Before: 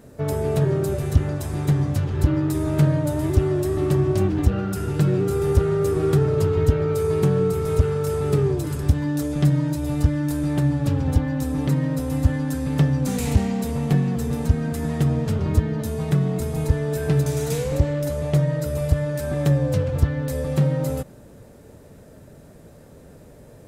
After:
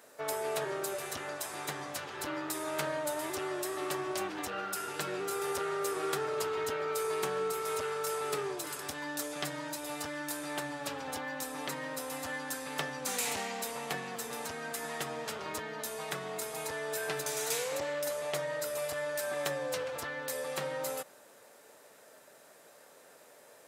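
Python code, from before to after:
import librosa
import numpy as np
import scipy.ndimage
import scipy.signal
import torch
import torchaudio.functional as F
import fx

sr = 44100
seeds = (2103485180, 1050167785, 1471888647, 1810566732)

y = scipy.signal.sosfilt(scipy.signal.butter(2, 850.0, 'highpass', fs=sr, output='sos'), x)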